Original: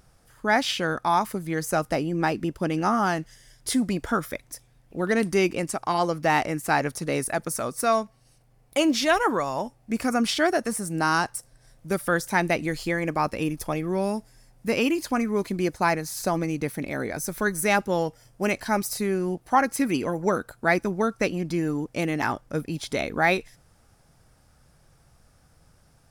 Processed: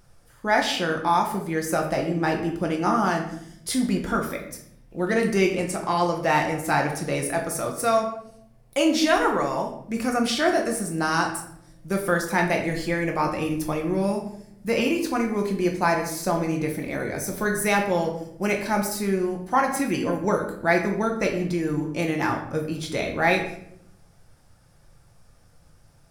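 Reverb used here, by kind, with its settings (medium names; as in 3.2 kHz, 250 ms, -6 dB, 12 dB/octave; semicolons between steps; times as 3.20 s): simulated room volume 150 m³, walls mixed, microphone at 0.83 m; trim -1.5 dB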